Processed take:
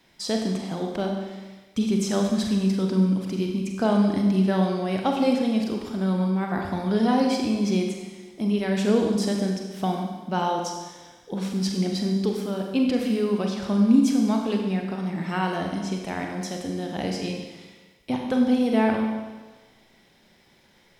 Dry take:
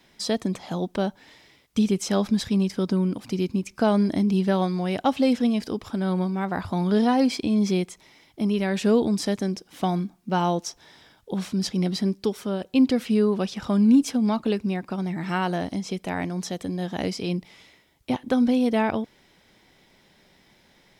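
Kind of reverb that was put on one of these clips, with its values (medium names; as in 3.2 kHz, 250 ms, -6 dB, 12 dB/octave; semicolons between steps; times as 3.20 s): Schroeder reverb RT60 1.3 s, combs from 32 ms, DRR 1.5 dB; trim -2.5 dB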